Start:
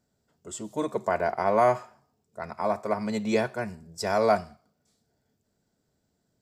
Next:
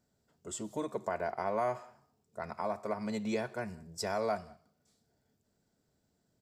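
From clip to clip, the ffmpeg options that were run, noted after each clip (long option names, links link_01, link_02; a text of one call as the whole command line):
ffmpeg -i in.wav -filter_complex "[0:a]acompressor=threshold=-34dB:ratio=2,asplit=2[link_01][link_02];[link_02]adelay=186.6,volume=-26dB,highshelf=frequency=4000:gain=-4.2[link_03];[link_01][link_03]amix=inputs=2:normalize=0,volume=-2dB" out.wav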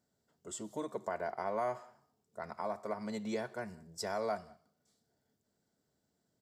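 ffmpeg -i in.wav -af "lowshelf=frequency=83:gain=-10.5,bandreject=frequency=2500:width=8.9,volume=-2.5dB" out.wav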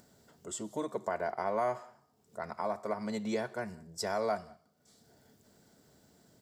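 ffmpeg -i in.wav -af "acompressor=mode=upward:threshold=-54dB:ratio=2.5,volume=3.5dB" out.wav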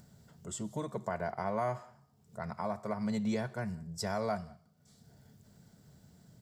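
ffmpeg -i in.wav -af "lowshelf=frequency=220:width_type=q:width=1.5:gain=9.5,volume=-1.5dB" out.wav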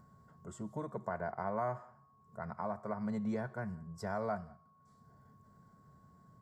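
ffmpeg -i in.wav -af "aeval=exprs='val(0)+0.000631*sin(2*PI*1100*n/s)':channel_layout=same,highshelf=frequency=2100:width_type=q:width=1.5:gain=-10,volume=-3.5dB" out.wav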